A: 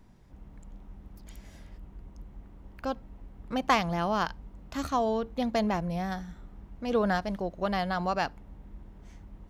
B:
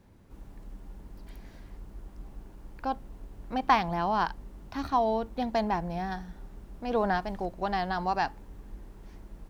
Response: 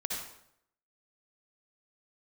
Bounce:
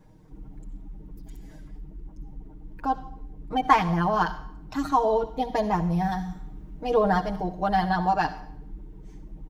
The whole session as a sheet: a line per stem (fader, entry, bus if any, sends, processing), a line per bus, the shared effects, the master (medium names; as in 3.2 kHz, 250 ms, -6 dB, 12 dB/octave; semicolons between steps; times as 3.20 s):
-4.0 dB, 0.00 s, send -15.5 dB, peaking EQ 610 Hz -11.5 dB 0.2 oct; gain riding within 3 dB 0.5 s; auto duck -6 dB, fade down 1.35 s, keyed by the second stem
-0.5 dB, 0.00 s, send -16 dB, spectral gate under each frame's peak -25 dB strong; vibrato 13 Hz 42 cents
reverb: on, RT60 0.75 s, pre-delay 52 ms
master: treble shelf 4.5 kHz +6 dB; comb 6.5 ms, depth 97%